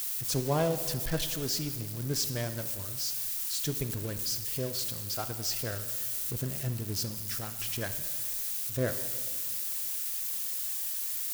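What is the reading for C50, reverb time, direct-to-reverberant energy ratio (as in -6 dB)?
10.5 dB, 1.7 s, 9.0 dB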